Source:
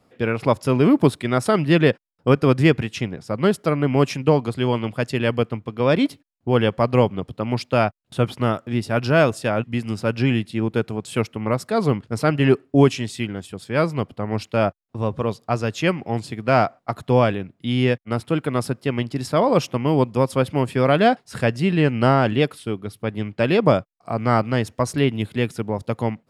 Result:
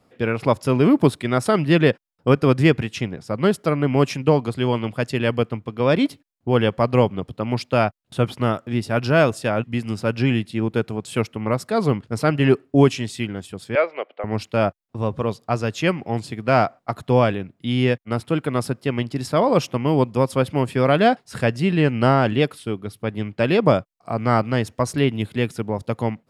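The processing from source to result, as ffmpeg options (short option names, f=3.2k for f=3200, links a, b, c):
-filter_complex "[0:a]asettb=1/sr,asplit=3[a][b][c];[a]atrim=end=13.754[d];[b]atrim=start=13.75:end=14.24,asetpts=PTS-STARTPTS,afade=t=in:d=0.004:c=qsin,afade=t=out:st=0.486:d=0.004:c=qsin,highpass=f=450:w=0.5412,highpass=f=450:w=1.3066,equalizer=f=580:t=q:w=4:g=5,equalizer=f=1k:t=q:w=4:g=-6,equalizer=f=2.2k:t=q:w=4:g=6,lowpass=f=3.2k:w=0.5412,lowpass=f=3.2k:w=1.3066[e];[c]atrim=start=14.236[f];[d][e]acrossfade=d=0.004:c1=hsin:c2=qsin[g];[g][f]acrossfade=d=0.004:c1=qsin:c2=hsin"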